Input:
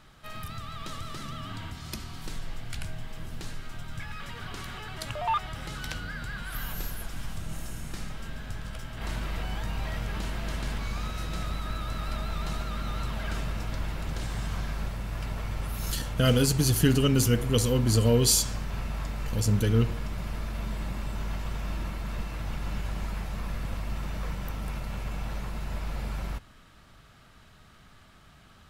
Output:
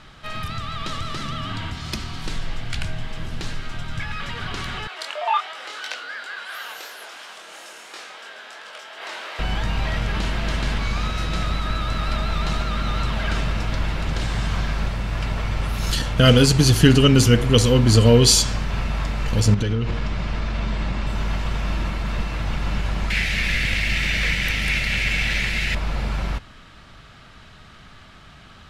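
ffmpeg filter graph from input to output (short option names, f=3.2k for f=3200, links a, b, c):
-filter_complex "[0:a]asettb=1/sr,asplit=3[a][b][c];[a]atrim=end=4.874[d];[b]atrim=start=4.87:end=9.39,asetpts=PTS-STARTPTS,afade=t=in:d=0.004:c=qsin,afade=t=out:st=4.516:d=0.004:c=qsin,highpass=f=440:w=0.5412,highpass=f=440:w=1.3066,flanger=delay=19.5:depth=6.6:speed=2.9[e];[c]atrim=start=9.386[f];[d][e]acrossfade=d=0.004:c1=hsin:c2=qsin[g];[g][f]acrossfade=d=0.004:c1=qsin:c2=hsin,asettb=1/sr,asplit=3[h][i][j];[h]atrim=end=19.544[k];[i]atrim=start=19.54:end=21.07,asetpts=PTS-STARTPTS,afade=t=in:d=0.004:c=qsin,afade=t=out:st=1.526:d=0.004:c=qsin,lowpass=6.7k,acompressor=threshold=-26dB:ratio=12:attack=3.2:release=140:knee=1:detection=peak[l];[j]atrim=start=21.066[m];[k][l]acrossfade=d=0.004:c1=hsin:c2=qsin[n];[n][m]acrossfade=d=0.004:c1=qsin:c2=hsin,asettb=1/sr,asplit=3[o][p][q];[o]atrim=end=23.104[r];[p]atrim=start=23.1:end=25.75,asetpts=PTS-STARTPTS,afade=t=in:d=0.004:c=qsin,afade=t=out:st=2.646:d=0.004:c=qsin,highshelf=f=1.5k:t=q:w=3:g=10.5,aeval=exprs='sgn(val(0))*max(abs(val(0))-0.00355,0)':c=same[s];[q]atrim=start=25.746[t];[r][s]acrossfade=d=0.004:c1=hsin:c2=qsin[u];[u][t]acrossfade=d=0.004:c1=qsin:c2=hsin,lowpass=3.5k,aemphasis=mode=production:type=75kf,volume=8.5dB"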